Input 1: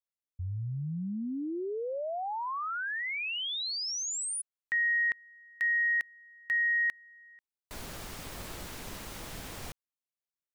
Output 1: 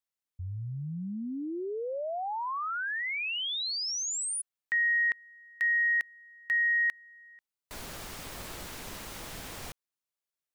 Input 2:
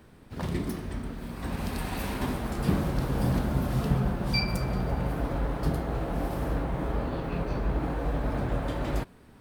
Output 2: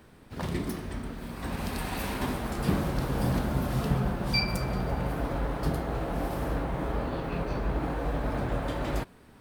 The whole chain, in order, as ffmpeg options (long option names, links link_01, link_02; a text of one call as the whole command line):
ffmpeg -i in.wav -af "lowshelf=frequency=360:gain=-3.5,volume=1.5dB" out.wav